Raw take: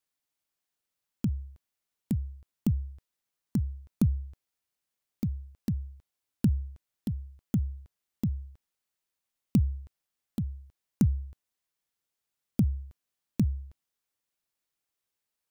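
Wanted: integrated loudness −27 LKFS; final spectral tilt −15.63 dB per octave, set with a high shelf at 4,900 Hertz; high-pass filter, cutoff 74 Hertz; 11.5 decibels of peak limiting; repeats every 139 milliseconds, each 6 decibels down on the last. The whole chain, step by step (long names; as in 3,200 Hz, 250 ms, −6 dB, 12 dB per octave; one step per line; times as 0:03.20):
high-pass filter 74 Hz
high-shelf EQ 4,900 Hz +7.5 dB
brickwall limiter −24.5 dBFS
repeating echo 139 ms, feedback 50%, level −6 dB
level +10.5 dB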